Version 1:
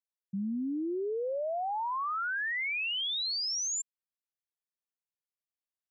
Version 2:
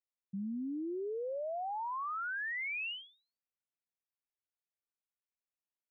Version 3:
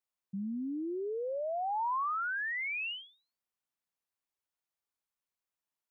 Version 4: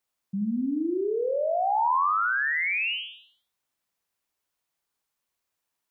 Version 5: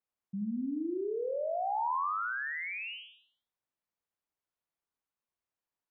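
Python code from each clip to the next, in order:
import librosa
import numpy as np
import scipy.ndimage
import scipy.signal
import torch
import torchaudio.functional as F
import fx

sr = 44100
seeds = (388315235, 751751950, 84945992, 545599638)

y1 = scipy.signal.sosfilt(scipy.signal.butter(16, 2900.0, 'lowpass', fs=sr, output='sos'), x)
y1 = y1 * 10.0 ** (-5.0 / 20.0)
y2 = fx.peak_eq(y1, sr, hz=1000.0, db=4.5, octaves=0.95)
y2 = y2 * 10.0 ** (1.5 / 20.0)
y3 = fx.echo_feedback(y2, sr, ms=79, feedback_pct=39, wet_db=-6.0)
y3 = y3 * 10.0 ** (8.0 / 20.0)
y4 = fx.high_shelf(y3, sr, hz=2700.0, db=-11.5)
y4 = y4 * 10.0 ** (-7.0 / 20.0)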